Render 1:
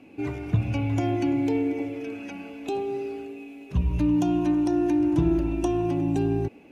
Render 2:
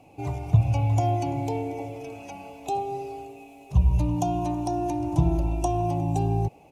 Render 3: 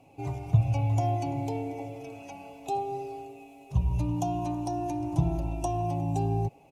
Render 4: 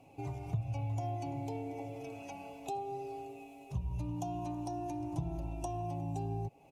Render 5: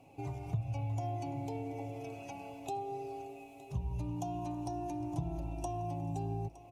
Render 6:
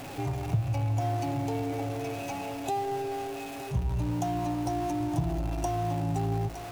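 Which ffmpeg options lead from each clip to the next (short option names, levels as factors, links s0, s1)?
-af "firequalizer=gain_entry='entry(150,0);entry(220,-16);entry(760,4);entry(1600,-19);entry(2300,-10);entry(6700,1)':delay=0.05:min_phase=1,volume=1.78"
-af "aecho=1:1:7.4:0.32,volume=0.596"
-af "acompressor=threshold=0.0126:ratio=2,volume=0.794"
-af "aecho=1:1:914|1828|2742:0.133|0.0373|0.0105"
-af "aeval=exprs='val(0)+0.5*0.00708*sgn(val(0))':c=same,volume=2.11"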